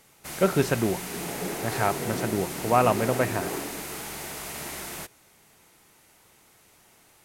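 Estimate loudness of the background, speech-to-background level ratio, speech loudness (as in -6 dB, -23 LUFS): -33.0 LUFS, 6.5 dB, -26.5 LUFS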